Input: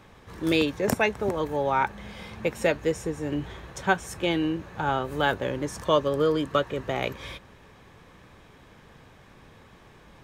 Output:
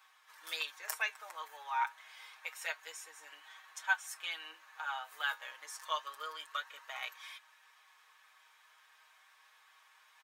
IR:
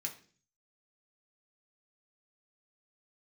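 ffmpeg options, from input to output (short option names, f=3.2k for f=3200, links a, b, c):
-af "highpass=f=990:w=0.5412,highpass=f=990:w=1.3066,highshelf=f=9.9k:g=8,aecho=1:1:6.4:0.8,areverse,acompressor=mode=upward:threshold=-49dB:ratio=2.5,areverse,flanger=delay=2.6:depth=7:regen=74:speed=0.28:shape=sinusoidal,volume=-6dB"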